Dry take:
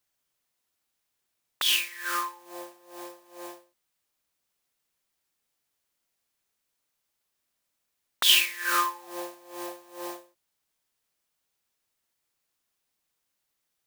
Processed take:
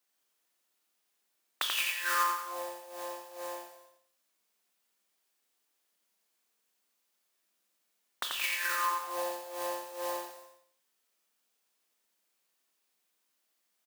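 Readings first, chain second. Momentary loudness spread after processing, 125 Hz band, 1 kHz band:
13 LU, n/a, -0.5 dB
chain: negative-ratio compressor -29 dBFS, ratio -1; steep high-pass 190 Hz 48 dB/oct; on a send: feedback echo 87 ms, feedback 32%, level -4 dB; on the sum: non-linear reverb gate 0.39 s falling, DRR 5.5 dB; gain -4.5 dB

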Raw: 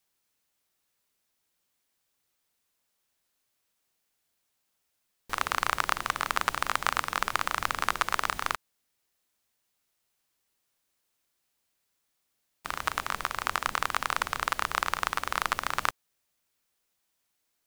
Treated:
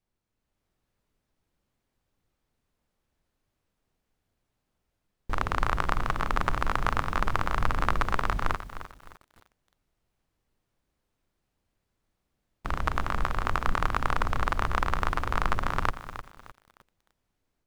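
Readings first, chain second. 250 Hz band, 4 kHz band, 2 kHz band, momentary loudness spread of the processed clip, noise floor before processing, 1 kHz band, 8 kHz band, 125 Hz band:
+9.0 dB, -6.5 dB, -2.0 dB, 8 LU, -78 dBFS, +0.5 dB, -10.0 dB, +15.0 dB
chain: tilt -4 dB/oct; AGC gain up to 6 dB; lo-fi delay 0.305 s, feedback 35%, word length 7-bit, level -12 dB; gain -4 dB

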